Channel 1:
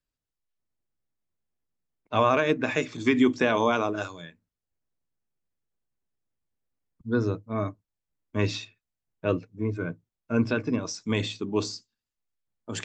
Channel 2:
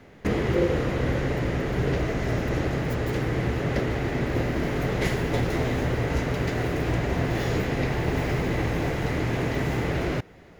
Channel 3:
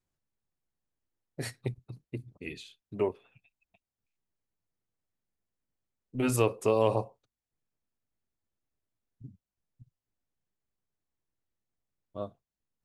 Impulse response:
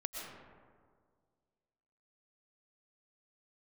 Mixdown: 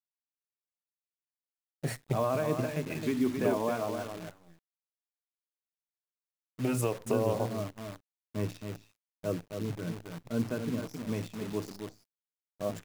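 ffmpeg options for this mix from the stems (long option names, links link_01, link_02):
-filter_complex "[0:a]equalizer=frequency=4800:width=0.32:gain=-8.5,volume=-9.5dB,asplit=2[link_01][link_02];[link_02]volume=-7dB[link_03];[2:a]adelay=450,volume=0dB,highpass=frequency=81:poles=1,acompressor=threshold=-28dB:ratio=10,volume=0dB[link_04];[link_03]aecho=0:1:267:1[link_05];[link_01][link_04][link_05]amix=inputs=3:normalize=0,equalizer=frequency=160:width_type=o:width=0.67:gain=9,equalizer=frequency=630:width_type=o:width=0.67:gain=5,equalizer=frequency=4000:width_type=o:width=0.67:gain=-5,acrusher=bits=8:dc=4:mix=0:aa=0.000001"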